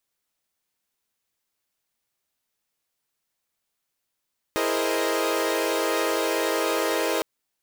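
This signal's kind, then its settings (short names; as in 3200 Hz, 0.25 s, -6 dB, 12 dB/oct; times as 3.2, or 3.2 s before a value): chord E4/G#4/A#4/C5/D#5 saw, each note -26.5 dBFS 2.66 s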